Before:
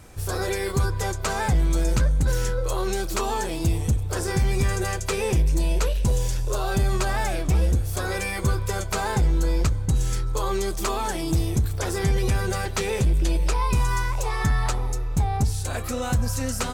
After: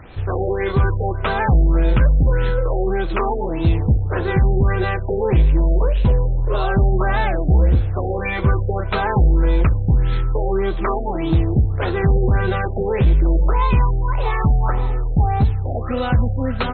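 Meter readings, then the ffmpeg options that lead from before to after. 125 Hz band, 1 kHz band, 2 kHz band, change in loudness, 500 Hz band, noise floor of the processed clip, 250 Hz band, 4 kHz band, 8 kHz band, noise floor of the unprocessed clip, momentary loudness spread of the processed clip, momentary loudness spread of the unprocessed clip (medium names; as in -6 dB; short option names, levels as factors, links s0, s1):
+6.5 dB, +5.5 dB, +4.0 dB, +6.0 dB, +6.5 dB, -23 dBFS, +6.5 dB, -3.0 dB, under -40 dB, -29 dBFS, 6 LU, 4 LU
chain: -af "acrusher=bits=7:mix=0:aa=0.000001,afftfilt=real='re*lt(b*sr/1024,810*pow(4300/810,0.5+0.5*sin(2*PI*1.7*pts/sr)))':imag='im*lt(b*sr/1024,810*pow(4300/810,0.5+0.5*sin(2*PI*1.7*pts/sr)))':win_size=1024:overlap=0.75,volume=2.11"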